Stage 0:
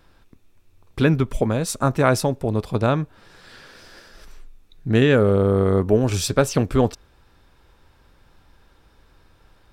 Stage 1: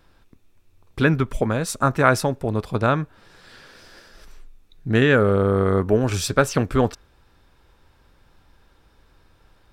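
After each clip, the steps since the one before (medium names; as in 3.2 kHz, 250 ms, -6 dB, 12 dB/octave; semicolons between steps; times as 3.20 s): dynamic bell 1.5 kHz, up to +7 dB, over -39 dBFS, Q 1.3; trim -1.5 dB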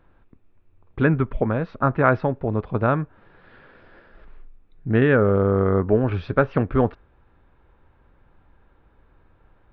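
Gaussian low-pass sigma 3.6 samples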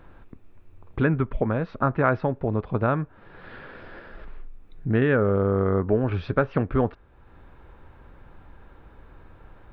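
compression 1.5:1, threshold -48 dBFS, peak gain reduction 13 dB; trim +8.5 dB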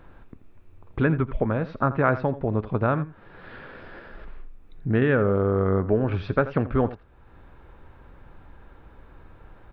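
delay 84 ms -15.5 dB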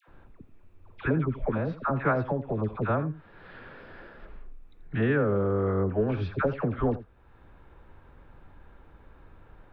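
phase dispersion lows, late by 82 ms, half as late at 890 Hz; trim -4 dB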